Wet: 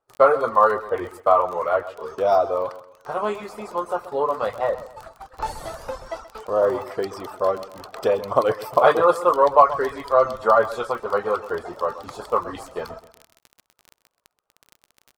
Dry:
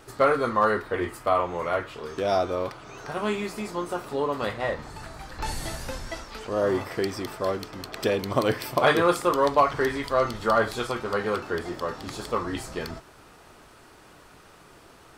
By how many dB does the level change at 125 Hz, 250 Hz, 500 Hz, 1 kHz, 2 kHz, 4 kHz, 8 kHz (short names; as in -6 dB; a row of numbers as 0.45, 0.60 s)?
-6.0 dB, -4.5 dB, +5.5 dB, +6.0 dB, -1.5 dB, -5.5 dB, n/a